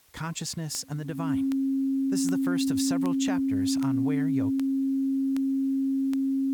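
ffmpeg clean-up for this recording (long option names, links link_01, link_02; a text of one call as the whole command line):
ffmpeg -i in.wav -af "adeclick=threshold=4,bandreject=frequency=270:width=30,agate=range=-21dB:threshold=-25dB" out.wav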